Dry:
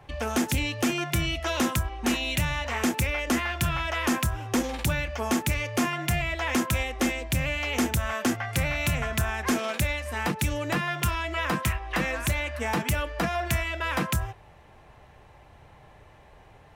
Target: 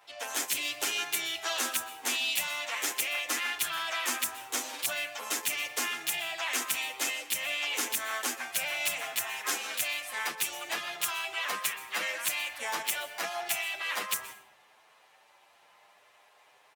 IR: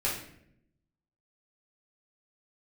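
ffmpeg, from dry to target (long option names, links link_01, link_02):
-filter_complex "[0:a]asplit=3[link_01][link_02][link_03];[link_02]asetrate=52444,aresample=44100,atempo=0.840896,volume=-6dB[link_04];[link_03]asetrate=55563,aresample=44100,atempo=0.793701,volume=-14dB[link_05];[link_01][link_04][link_05]amix=inputs=3:normalize=0,highpass=610,highshelf=frequency=2600:gain=10.5,asplit=2[link_06][link_07];[1:a]atrim=start_sample=2205,adelay=120[link_08];[link_07][link_08]afir=irnorm=-1:irlink=0,volume=-21dB[link_09];[link_06][link_09]amix=inputs=2:normalize=0,asplit=2[link_10][link_11];[link_11]adelay=8.4,afreqshift=0.45[link_12];[link_10][link_12]amix=inputs=2:normalize=1,volume=-5dB"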